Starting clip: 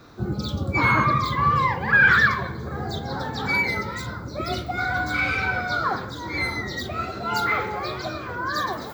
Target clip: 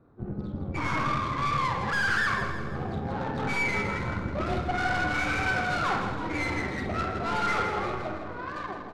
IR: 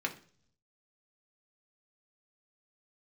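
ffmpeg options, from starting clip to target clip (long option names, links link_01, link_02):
-filter_complex "[0:a]dynaudnorm=framelen=130:gausssize=17:maxgain=11.5dB,aeval=exprs='(tanh(8.91*val(0)+0.7)-tanh(0.7))/8.91':channel_layout=same,adynamicsmooth=sensitivity=1:basefreq=860,aecho=1:1:162|324|486|648|810|972:0.398|0.191|0.0917|0.044|0.0211|0.0101,asplit=2[link_01][link_02];[1:a]atrim=start_sample=2205,adelay=48[link_03];[link_02][link_03]afir=irnorm=-1:irlink=0,volume=-10.5dB[link_04];[link_01][link_04]amix=inputs=2:normalize=0,volume=-5dB"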